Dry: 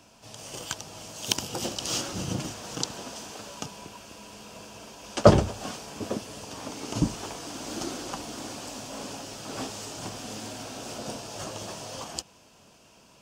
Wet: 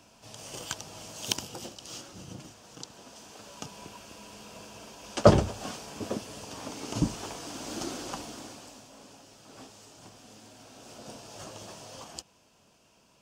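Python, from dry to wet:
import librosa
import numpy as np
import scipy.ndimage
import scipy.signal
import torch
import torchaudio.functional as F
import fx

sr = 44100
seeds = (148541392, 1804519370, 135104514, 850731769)

y = fx.gain(x, sr, db=fx.line((1.26, -2.0), (1.79, -13.0), (2.85, -13.0), (3.86, -2.0), (8.17, -2.0), (8.96, -14.0), (10.5, -14.0), (11.31, -7.0)))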